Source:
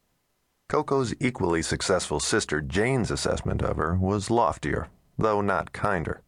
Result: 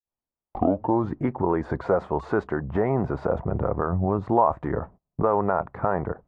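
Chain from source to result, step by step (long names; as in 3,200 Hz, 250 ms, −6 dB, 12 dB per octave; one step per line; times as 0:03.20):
turntable start at the beginning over 1.13 s
low-pass with resonance 940 Hz, resonance Q 1.5
noise gate −44 dBFS, range −23 dB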